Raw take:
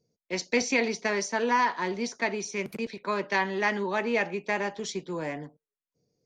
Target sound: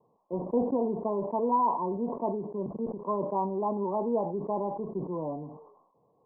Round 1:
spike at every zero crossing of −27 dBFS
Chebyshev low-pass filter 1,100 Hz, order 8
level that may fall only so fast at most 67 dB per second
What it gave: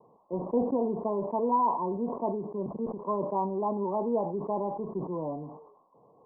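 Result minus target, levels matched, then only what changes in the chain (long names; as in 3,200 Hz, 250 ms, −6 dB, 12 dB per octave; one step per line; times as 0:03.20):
spike at every zero crossing: distortion +9 dB
change: spike at every zero crossing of −36 dBFS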